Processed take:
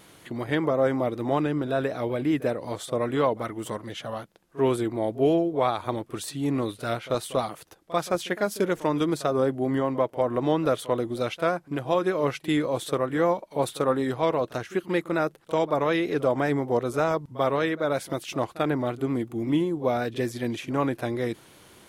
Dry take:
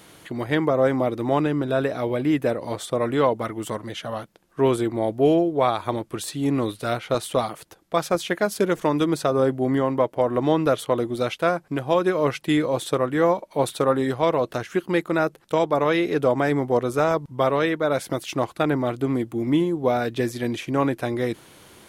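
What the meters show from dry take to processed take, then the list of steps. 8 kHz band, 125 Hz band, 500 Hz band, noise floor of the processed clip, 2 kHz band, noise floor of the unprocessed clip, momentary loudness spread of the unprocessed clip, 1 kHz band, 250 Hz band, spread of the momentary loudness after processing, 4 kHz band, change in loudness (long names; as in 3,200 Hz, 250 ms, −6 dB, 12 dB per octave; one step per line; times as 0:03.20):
−3.5 dB, −3.5 dB, −3.5 dB, −53 dBFS, −3.5 dB, −54 dBFS, 7 LU, −3.5 dB, −3.5 dB, 7 LU, −3.5 dB, −3.5 dB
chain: backwards echo 42 ms −18 dB
pitch vibrato 5.3 Hz 37 cents
level −3.5 dB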